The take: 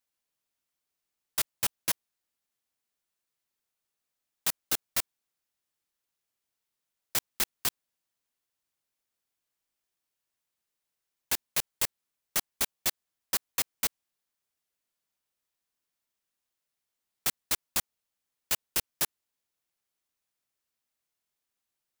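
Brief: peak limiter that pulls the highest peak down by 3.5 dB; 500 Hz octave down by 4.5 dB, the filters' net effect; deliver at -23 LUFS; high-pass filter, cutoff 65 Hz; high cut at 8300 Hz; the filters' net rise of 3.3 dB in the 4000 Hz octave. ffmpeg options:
-af "highpass=65,lowpass=8.3k,equalizer=f=500:t=o:g=-6,equalizer=f=4k:t=o:g=4.5,volume=11.5dB,alimiter=limit=-6.5dB:level=0:latency=1"

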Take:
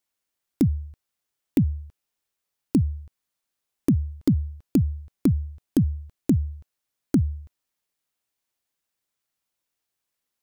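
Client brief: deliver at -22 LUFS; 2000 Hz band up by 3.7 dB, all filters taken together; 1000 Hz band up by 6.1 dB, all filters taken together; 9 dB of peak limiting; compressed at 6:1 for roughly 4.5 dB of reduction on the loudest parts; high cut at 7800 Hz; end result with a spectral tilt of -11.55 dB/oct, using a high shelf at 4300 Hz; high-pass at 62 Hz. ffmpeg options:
-af "highpass=62,lowpass=7.8k,equalizer=f=1k:t=o:g=7.5,equalizer=f=2k:t=o:g=3,highshelf=f=4.3k:g=-3.5,acompressor=threshold=-19dB:ratio=6,volume=10dB,alimiter=limit=-8.5dB:level=0:latency=1"

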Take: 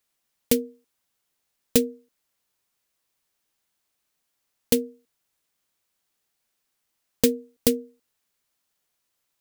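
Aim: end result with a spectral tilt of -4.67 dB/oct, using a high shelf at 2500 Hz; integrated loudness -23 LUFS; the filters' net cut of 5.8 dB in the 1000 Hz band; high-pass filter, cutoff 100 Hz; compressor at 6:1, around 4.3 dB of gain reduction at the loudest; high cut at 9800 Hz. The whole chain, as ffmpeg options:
-af "highpass=100,lowpass=9.8k,equalizer=f=1k:t=o:g=-7.5,highshelf=f=2.5k:g=-6,acompressor=threshold=-21dB:ratio=6,volume=9dB"

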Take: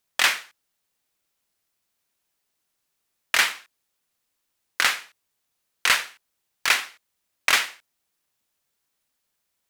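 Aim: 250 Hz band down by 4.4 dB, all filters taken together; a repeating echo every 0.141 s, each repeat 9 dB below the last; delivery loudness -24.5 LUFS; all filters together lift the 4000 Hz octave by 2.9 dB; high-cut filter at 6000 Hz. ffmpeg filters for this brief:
-af "lowpass=6k,equalizer=f=250:t=o:g=-6,equalizer=f=4k:t=o:g=4.5,aecho=1:1:141|282|423|564:0.355|0.124|0.0435|0.0152,volume=-3dB"

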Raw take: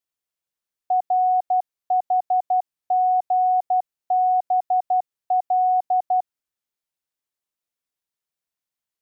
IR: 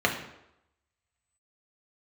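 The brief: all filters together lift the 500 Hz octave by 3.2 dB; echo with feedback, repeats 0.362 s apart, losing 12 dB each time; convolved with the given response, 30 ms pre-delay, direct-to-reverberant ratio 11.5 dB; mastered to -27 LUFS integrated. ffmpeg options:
-filter_complex "[0:a]equalizer=f=500:t=o:g=7,aecho=1:1:362|724|1086:0.251|0.0628|0.0157,asplit=2[a][b];[1:a]atrim=start_sample=2205,adelay=30[c];[b][c]afir=irnorm=-1:irlink=0,volume=-25.5dB[d];[a][d]amix=inputs=2:normalize=0,volume=-9dB"

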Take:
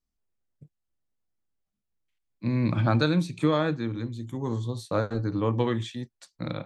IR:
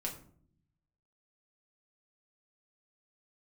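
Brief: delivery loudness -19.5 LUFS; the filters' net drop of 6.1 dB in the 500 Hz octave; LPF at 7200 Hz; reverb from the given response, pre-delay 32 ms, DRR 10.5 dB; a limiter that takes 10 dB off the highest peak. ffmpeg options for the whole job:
-filter_complex "[0:a]lowpass=7.2k,equalizer=f=500:t=o:g=-7.5,alimiter=limit=-22dB:level=0:latency=1,asplit=2[a][b];[1:a]atrim=start_sample=2205,adelay=32[c];[b][c]afir=irnorm=-1:irlink=0,volume=-11dB[d];[a][d]amix=inputs=2:normalize=0,volume=13dB"

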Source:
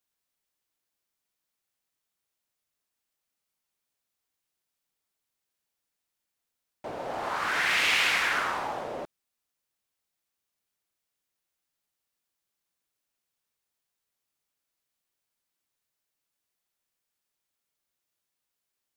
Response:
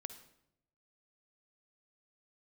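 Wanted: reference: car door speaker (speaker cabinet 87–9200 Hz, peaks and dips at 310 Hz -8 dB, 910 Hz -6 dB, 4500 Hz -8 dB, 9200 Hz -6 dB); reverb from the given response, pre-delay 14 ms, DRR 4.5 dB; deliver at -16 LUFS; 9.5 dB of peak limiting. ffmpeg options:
-filter_complex "[0:a]alimiter=limit=-20dB:level=0:latency=1,asplit=2[a][b];[1:a]atrim=start_sample=2205,adelay=14[c];[b][c]afir=irnorm=-1:irlink=0,volume=-1dB[d];[a][d]amix=inputs=2:normalize=0,highpass=87,equalizer=f=310:t=q:w=4:g=-8,equalizer=f=910:t=q:w=4:g=-6,equalizer=f=4.5k:t=q:w=4:g=-8,equalizer=f=9.2k:t=q:w=4:g=-6,lowpass=f=9.2k:w=0.5412,lowpass=f=9.2k:w=1.3066,volume=13dB"

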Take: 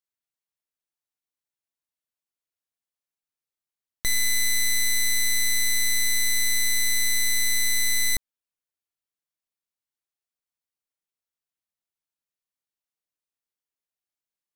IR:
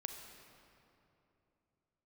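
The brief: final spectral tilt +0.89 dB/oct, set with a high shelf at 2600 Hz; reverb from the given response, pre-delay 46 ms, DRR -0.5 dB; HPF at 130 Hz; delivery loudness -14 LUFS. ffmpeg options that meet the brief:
-filter_complex "[0:a]highpass=130,highshelf=f=2.6k:g=-4,asplit=2[a][b];[1:a]atrim=start_sample=2205,adelay=46[c];[b][c]afir=irnorm=-1:irlink=0,volume=2dB[d];[a][d]amix=inputs=2:normalize=0,volume=9dB"

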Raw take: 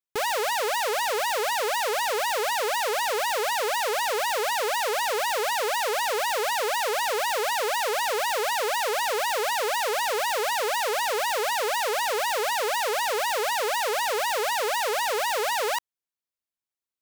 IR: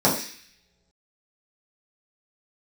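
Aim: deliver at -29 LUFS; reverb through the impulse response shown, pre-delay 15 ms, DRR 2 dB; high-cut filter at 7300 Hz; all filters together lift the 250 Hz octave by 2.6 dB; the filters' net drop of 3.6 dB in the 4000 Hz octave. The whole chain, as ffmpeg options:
-filter_complex "[0:a]lowpass=7.3k,equalizer=f=250:t=o:g=6,equalizer=f=4k:t=o:g=-4.5,asplit=2[a][b];[1:a]atrim=start_sample=2205,adelay=15[c];[b][c]afir=irnorm=-1:irlink=0,volume=-20dB[d];[a][d]amix=inputs=2:normalize=0,volume=-7dB"

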